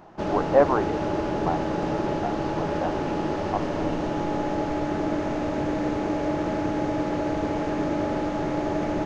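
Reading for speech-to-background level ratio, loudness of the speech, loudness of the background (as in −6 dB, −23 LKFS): −1.0 dB, −28.0 LKFS, −27.0 LKFS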